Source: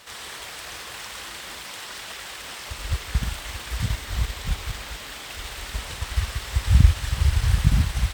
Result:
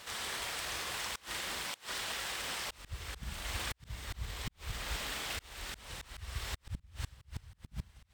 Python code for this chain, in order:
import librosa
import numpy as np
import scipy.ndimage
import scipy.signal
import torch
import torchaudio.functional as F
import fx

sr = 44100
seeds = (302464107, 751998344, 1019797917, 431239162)

y = fx.rev_schroeder(x, sr, rt60_s=0.49, comb_ms=33, drr_db=8.5)
y = fx.auto_swell(y, sr, attack_ms=478.0)
y = fx.gate_flip(y, sr, shuts_db=-23.0, range_db=-25)
y = y * librosa.db_to_amplitude(-2.5)